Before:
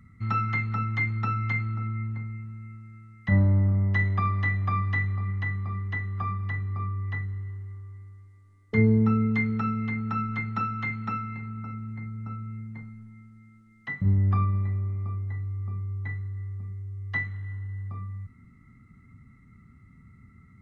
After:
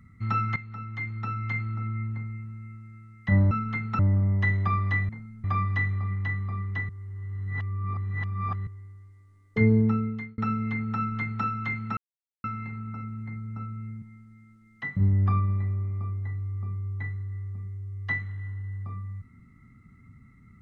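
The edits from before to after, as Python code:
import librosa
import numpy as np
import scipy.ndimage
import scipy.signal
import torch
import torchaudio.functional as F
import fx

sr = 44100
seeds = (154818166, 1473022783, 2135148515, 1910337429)

y = fx.edit(x, sr, fx.fade_in_from(start_s=0.56, length_s=1.4, floor_db=-14.0),
    fx.reverse_span(start_s=6.06, length_s=1.78),
    fx.fade_out_span(start_s=8.96, length_s=0.59),
    fx.duplicate(start_s=10.14, length_s=0.48, to_s=3.51),
    fx.insert_silence(at_s=11.14, length_s=0.47),
    fx.move(start_s=12.72, length_s=0.35, to_s=4.61), tone=tone)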